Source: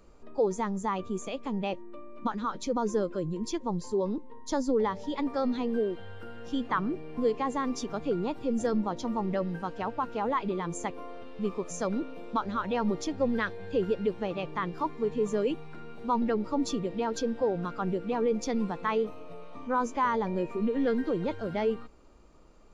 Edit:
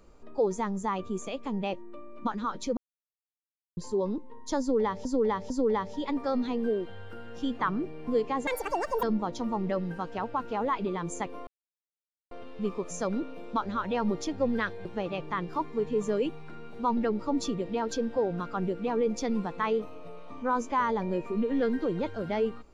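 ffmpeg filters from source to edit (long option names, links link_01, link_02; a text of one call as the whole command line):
ffmpeg -i in.wav -filter_complex "[0:a]asplit=9[link_01][link_02][link_03][link_04][link_05][link_06][link_07][link_08][link_09];[link_01]atrim=end=2.77,asetpts=PTS-STARTPTS,afade=type=out:start_time=2.766:duration=0.004:curve=hsin[link_10];[link_02]atrim=start=2.77:end=3.77,asetpts=PTS-STARTPTS,volume=0[link_11];[link_03]atrim=start=3.77:end=5.052,asetpts=PTS-STARTPTS,afade=type=in:duration=0.004:curve=hsin[link_12];[link_04]atrim=start=4.598:end=5.052[link_13];[link_05]atrim=start=4.598:end=7.574[link_14];[link_06]atrim=start=7.57:end=8.67,asetpts=PTS-STARTPTS,asetrate=86436,aresample=44100[link_15];[link_07]atrim=start=8.666:end=11.11,asetpts=PTS-STARTPTS,afade=type=out:start_time=2.44:duration=0.004:curve=hsin,apad=pad_dur=0.84[link_16];[link_08]atrim=start=11.11:end=13.652,asetpts=PTS-STARTPTS,afade=type=in:duration=0.004:curve=hsin[link_17];[link_09]atrim=start=14.098[link_18];[link_10][link_11][link_12]concat=n=3:v=0:a=1[link_19];[link_19][link_13]acrossfade=duration=0.004:curve1=hsin:curve2=hsin[link_20];[link_20][link_14]acrossfade=duration=0.004:curve1=hsin:curve2=hsin[link_21];[link_21][link_15]acrossfade=duration=0.004:curve1=hsin:curve2=hsin[link_22];[link_16][link_17]concat=n=2:v=0:a=1[link_23];[link_22][link_23]acrossfade=duration=0.004:curve1=hsin:curve2=hsin[link_24];[link_24][link_18]acrossfade=duration=0.004:curve1=hsin:curve2=hsin" out.wav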